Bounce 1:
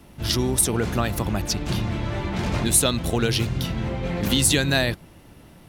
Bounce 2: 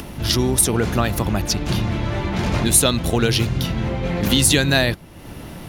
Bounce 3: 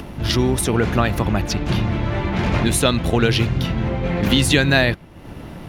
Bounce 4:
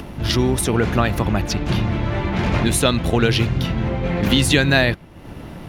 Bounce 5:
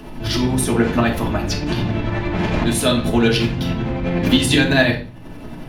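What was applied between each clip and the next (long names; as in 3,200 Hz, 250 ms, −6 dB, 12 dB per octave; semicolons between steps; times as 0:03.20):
notch filter 8,000 Hz, Q 12; upward compression, threshold −28 dBFS; level +4 dB
high-shelf EQ 4,200 Hz −11.5 dB; in parallel at −9.5 dB: dead-zone distortion −40 dBFS; on the sum: dynamic equaliser 2,300 Hz, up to +4 dB, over −33 dBFS, Q 0.89; level −1 dB
no processing that can be heard
shaped tremolo saw up 11 Hz, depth 65%; convolution reverb RT60 0.35 s, pre-delay 3 ms, DRR −3 dB; level −1.5 dB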